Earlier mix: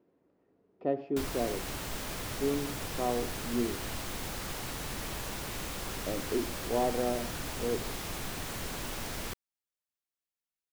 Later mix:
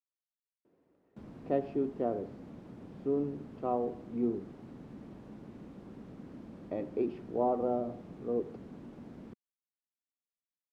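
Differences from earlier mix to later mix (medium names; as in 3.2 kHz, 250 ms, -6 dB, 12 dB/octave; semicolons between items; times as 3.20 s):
speech: entry +0.65 s; background: add band-pass filter 230 Hz, Q 2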